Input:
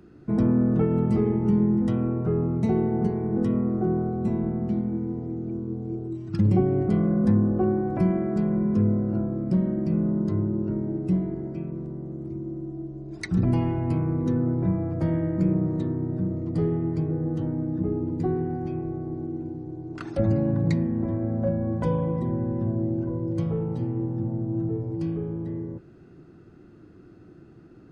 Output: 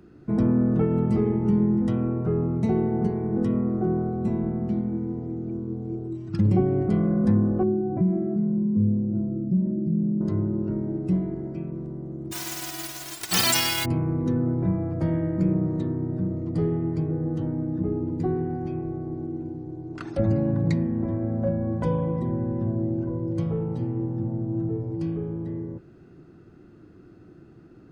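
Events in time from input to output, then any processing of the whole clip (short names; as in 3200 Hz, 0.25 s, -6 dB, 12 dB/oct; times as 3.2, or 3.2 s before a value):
7.63–10.21 spectral contrast raised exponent 1.6
12.31–13.84 spectral whitening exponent 0.1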